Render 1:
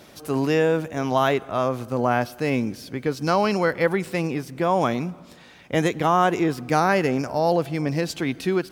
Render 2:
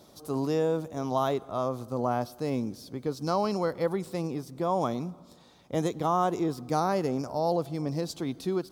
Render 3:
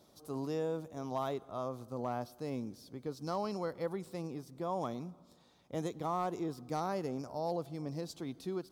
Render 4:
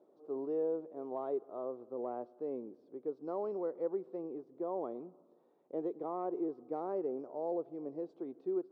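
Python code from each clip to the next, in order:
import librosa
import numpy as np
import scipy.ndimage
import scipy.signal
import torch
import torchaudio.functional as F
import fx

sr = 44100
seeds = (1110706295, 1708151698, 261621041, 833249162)

y1 = fx.band_shelf(x, sr, hz=2100.0, db=-11.0, octaves=1.2)
y1 = F.gain(torch.from_numpy(y1), -6.5).numpy()
y2 = np.clip(10.0 ** (17.0 / 20.0) * y1, -1.0, 1.0) / 10.0 ** (17.0 / 20.0)
y2 = F.gain(torch.from_numpy(y2), -9.0).numpy()
y3 = fx.ladder_bandpass(y2, sr, hz=450.0, resonance_pct=50)
y3 = F.gain(torch.from_numpy(y3), 9.5).numpy()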